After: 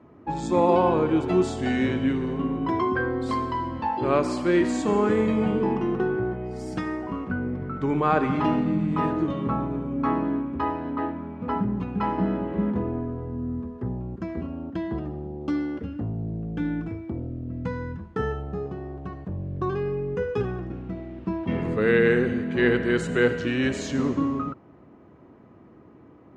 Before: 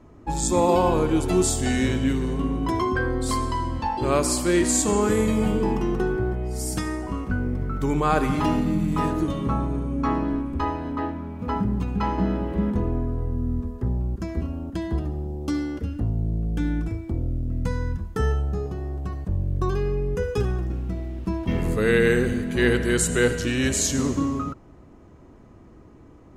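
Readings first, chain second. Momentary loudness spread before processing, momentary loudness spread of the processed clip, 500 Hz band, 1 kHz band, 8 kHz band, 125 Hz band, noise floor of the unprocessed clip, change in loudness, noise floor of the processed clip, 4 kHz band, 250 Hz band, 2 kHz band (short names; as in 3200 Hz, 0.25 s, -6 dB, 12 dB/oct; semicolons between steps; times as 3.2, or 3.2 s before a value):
9 LU, 11 LU, 0.0 dB, 0.0 dB, under -15 dB, -4.5 dB, -48 dBFS, -1.5 dB, -51 dBFS, -6.0 dB, -0.5 dB, -1.0 dB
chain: BPF 130–2700 Hz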